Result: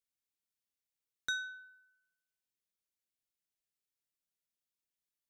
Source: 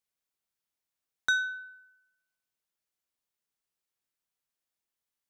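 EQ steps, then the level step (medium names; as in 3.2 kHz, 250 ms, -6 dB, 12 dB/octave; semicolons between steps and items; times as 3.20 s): peaking EQ 950 Hz -11 dB 1.4 oct; -4.5 dB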